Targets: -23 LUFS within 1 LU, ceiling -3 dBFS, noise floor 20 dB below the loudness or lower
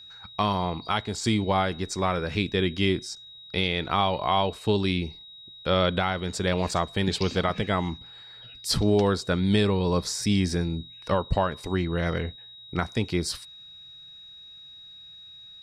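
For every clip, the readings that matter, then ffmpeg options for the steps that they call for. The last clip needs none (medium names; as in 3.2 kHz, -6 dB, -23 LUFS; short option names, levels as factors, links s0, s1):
steady tone 3.8 kHz; tone level -44 dBFS; loudness -26.5 LUFS; peak level -11.5 dBFS; loudness target -23.0 LUFS
-> -af "bandreject=f=3800:w=30"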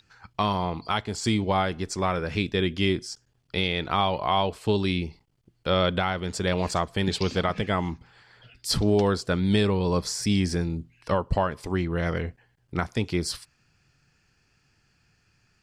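steady tone not found; loudness -26.5 LUFS; peak level -11.5 dBFS; loudness target -23.0 LUFS
-> -af "volume=1.5"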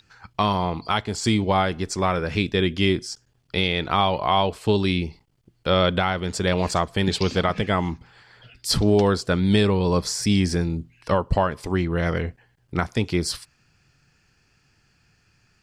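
loudness -23.0 LUFS; peak level -8.0 dBFS; noise floor -64 dBFS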